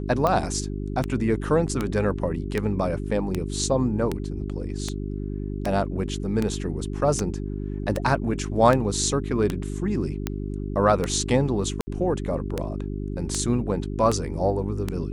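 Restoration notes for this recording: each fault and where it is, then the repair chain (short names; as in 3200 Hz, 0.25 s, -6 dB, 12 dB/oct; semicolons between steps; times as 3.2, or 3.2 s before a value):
hum 50 Hz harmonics 8 -30 dBFS
tick 78 rpm -11 dBFS
11.81–11.87 gap 60 ms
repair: de-click; de-hum 50 Hz, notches 8; interpolate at 11.81, 60 ms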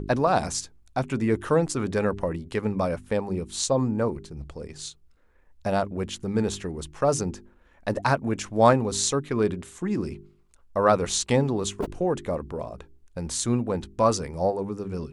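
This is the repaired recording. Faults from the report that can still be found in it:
none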